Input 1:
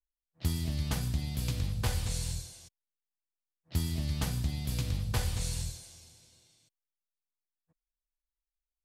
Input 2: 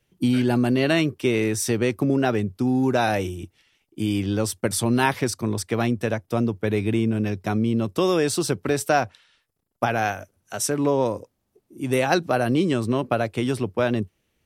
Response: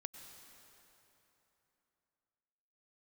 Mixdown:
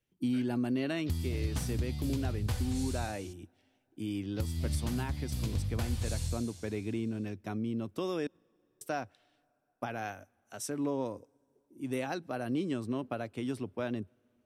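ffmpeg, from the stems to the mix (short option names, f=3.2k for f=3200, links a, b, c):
-filter_complex "[0:a]equalizer=f=86:t=o:w=0.89:g=7,adelay=650,volume=-1.5dB[a];[1:a]volume=-14.5dB,asplit=3[b][c][d];[b]atrim=end=8.27,asetpts=PTS-STARTPTS,afade=t=out:st=8.266:d=0.004:c=hsin[e];[c]atrim=start=8.27:end=8.81,asetpts=PTS-STARTPTS,volume=0[f];[d]atrim=start=8.81,asetpts=PTS-STARTPTS,afade=t=in:d=0.004:c=hsin[g];[e][f][g]concat=n=3:v=0:a=1,asplit=2[h][i];[i]volume=-23.5dB[j];[2:a]atrim=start_sample=2205[k];[j][k]afir=irnorm=-1:irlink=0[l];[a][h][l]amix=inputs=3:normalize=0,equalizer=f=270:t=o:w=0.39:g=6,alimiter=limit=-22.5dB:level=0:latency=1:release=434"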